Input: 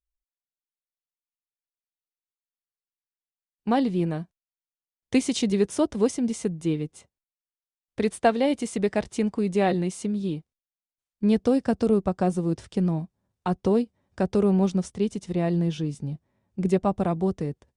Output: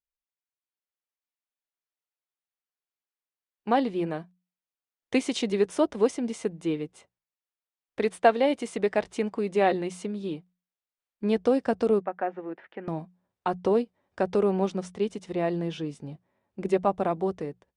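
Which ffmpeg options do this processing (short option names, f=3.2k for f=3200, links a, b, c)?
-filter_complex "[0:a]asettb=1/sr,asplit=3[a][b][c];[a]atrim=end=12.014[d];[b]atrim=start=12.01:end=12.88,asetpts=PTS-STARTPTS,afade=t=in:d=0.004:c=qsin,afade=t=out:st=0.866:d=0.004:c=qsin,highpass=420,equalizer=f=430:t=q:w=4:g=-7,equalizer=f=610:t=q:w=4:g=-4,equalizer=f=1.1k:t=q:w=4:g=-7,equalizer=f=1.8k:t=q:w=4:g=5,lowpass=f=2.3k:w=0.5412,lowpass=f=2.3k:w=1.3066[e];[c]atrim=start=12.876[f];[d][e]acrossfade=d=0.004:c1=hsin:c2=qsin[g];[g][f]acrossfade=d=0.004:c1=qsin:c2=hsin,bass=f=250:g=-13,treble=f=4k:g=-9,bandreject=f=60:t=h:w=6,bandreject=f=120:t=h:w=6,bandreject=f=180:t=h:w=6,dynaudnorm=f=510:g=3:m=4dB,volume=-2dB"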